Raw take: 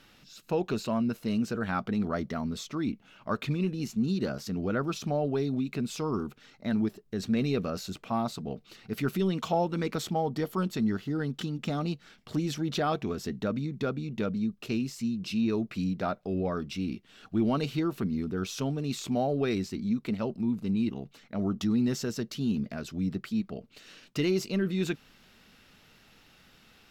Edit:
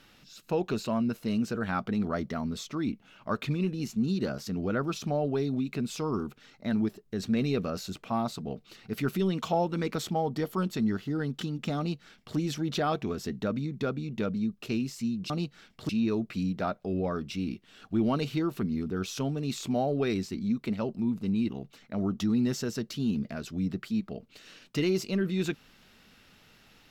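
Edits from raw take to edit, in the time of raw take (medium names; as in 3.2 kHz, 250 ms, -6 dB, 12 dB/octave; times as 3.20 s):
11.78–12.37 s: copy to 15.30 s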